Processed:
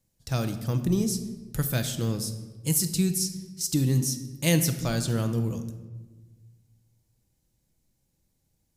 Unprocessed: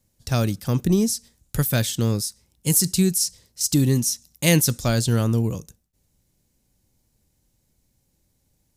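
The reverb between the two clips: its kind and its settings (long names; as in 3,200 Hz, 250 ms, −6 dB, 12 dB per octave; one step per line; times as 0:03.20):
rectangular room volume 960 cubic metres, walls mixed, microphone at 0.67 metres
level −6.5 dB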